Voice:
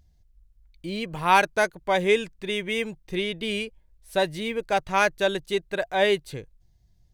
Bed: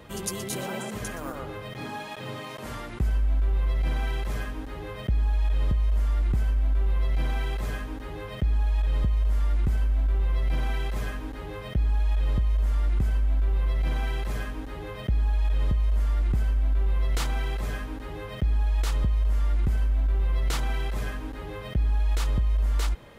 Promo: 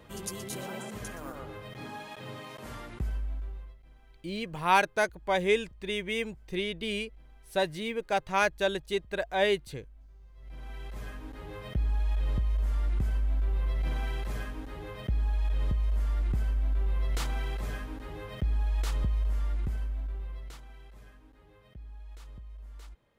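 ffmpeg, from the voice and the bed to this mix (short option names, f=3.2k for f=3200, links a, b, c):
-filter_complex "[0:a]adelay=3400,volume=-4.5dB[a];[1:a]volume=19.5dB,afade=t=out:st=2.91:d=0.86:silence=0.0630957,afade=t=in:st=10.35:d=1.33:silence=0.0530884,afade=t=out:st=19.16:d=1.46:silence=0.133352[b];[a][b]amix=inputs=2:normalize=0"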